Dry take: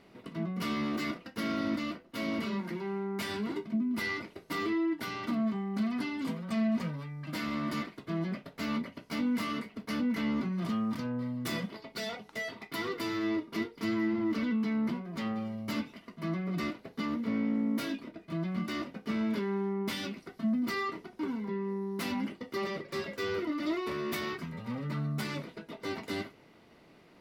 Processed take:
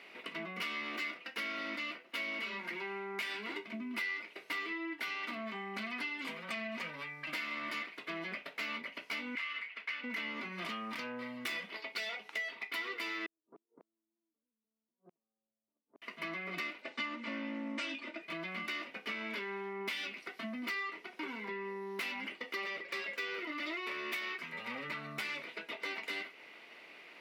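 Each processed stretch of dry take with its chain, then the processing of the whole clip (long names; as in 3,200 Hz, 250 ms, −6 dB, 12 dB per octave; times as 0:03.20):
0:09.35–0:10.04: resonant band-pass 2,100 Hz, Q 1.2 + multiband upward and downward compressor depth 40%
0:13.26–0:16.02: downward compressor, threshold −44 dBFS + Gaussian smoothing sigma 11 samples + gate with flip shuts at −42 dBFS, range −39 dB
0:16.82–0:18.22: linear-phase brick-wall low-pass 9,200 Hz + comb filter 3.4 ms, depth 95%
whole clip: high-pass filter 420 Hz 12 dB per octave; parametric band 2,400 Hz +14 dB 1.1 octaves; downward compressor 4 to 1, threshold −39 dBFS; level +1 dB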